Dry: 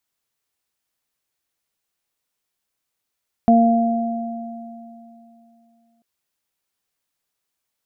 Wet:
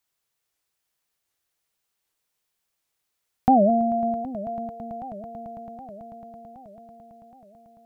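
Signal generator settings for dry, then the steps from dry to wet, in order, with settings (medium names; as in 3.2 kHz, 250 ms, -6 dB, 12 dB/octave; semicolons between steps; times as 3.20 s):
additive tone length 2.54 s, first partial 231 Hz, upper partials -16.5/-2 dB, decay 2.94 s, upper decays 1.47/2.81 s, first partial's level -10.5 dB
peaking EQ 250 Hz -10.5 dB 0.2 oct; echo with a slow build-up 110 ms, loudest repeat 8, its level -17.5 dB; warped record 78 rpm, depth 250 cents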